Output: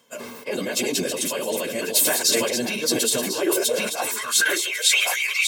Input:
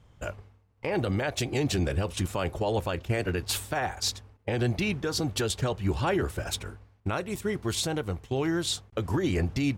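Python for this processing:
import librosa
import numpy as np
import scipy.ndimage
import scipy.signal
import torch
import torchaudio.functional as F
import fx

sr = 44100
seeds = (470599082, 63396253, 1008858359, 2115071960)

y = fx.reverse_delay(x, sr, ms=616, wet_db=-8)
y = scipy.signal.sosfilt(scipy.signal.butter(4, 98.0, 'highpass', fs=sr, output='sos'), y)
y = fx.riaa(y, sr, side='recording')
y = fx.hum_notches(y, sr, base_hz=50, count=8)
y = fx.dynamic_eq(y, sr, hz=1300.0, q=1.1, threshold_db=-43.0, ratio=4.0, max_db=-5)
y = y + 0.6 * np.pad(y, (int(1.9 * sr / 1000.0), 0))[:len(y)]
y = fx.stretch_vocoder_free(y, sr, factor=0.56)
y = fx.filter_sweep_highpass(y, sr, from_hz=240.0, to_hz=2300.0, start_s=3.31, end_s=4.68, q=7.8)
y = y + 10.0 ** (-16.0 / 20.0) * np.pad(y, (int(1097 * sr / 1000.0), 0))[:len(y)]
y = fx.sustainer(y, sr, db_per_s=32.0)
y = F.gain(torch.from_numpy(y), 4.0).numpy()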